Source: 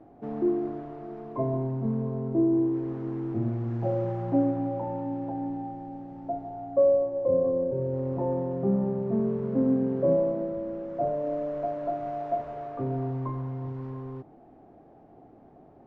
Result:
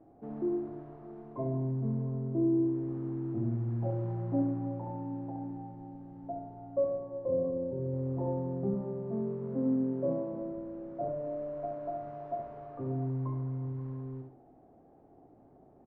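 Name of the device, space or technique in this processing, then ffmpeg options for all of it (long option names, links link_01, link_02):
through cloth: -filter_complex "[0:a]asettb=1/sr,asplit=3[link_01][link_02][link_03];[link_01]atrim=end=8.744[link_04];[link_02]atrim=start=8.74:end=10.32,asetpts=PTS-STARTPTS,afade=type=in:duration=0.004:curve=qsin,afade=type=out:start_time=1.576:duration=0.004:curve=qsin,highpass=frequency=160:poles=1[link_05];[link_03]atrim=start=10.316[link_06];[link_04][link_05]acrossfade=duration=0.004:curve1=hsin:curve2=qsin[link_07];[link_07][link_06]acrossfade=duration=0.004:curve1=qsin:curve2=hsin,highshelf=frequency=2000:gain=-11.5,aecho=1:1:69|138|207|276|345:0.562|0.208|0.077|0.0285|0.0105,volume=-6.5dB"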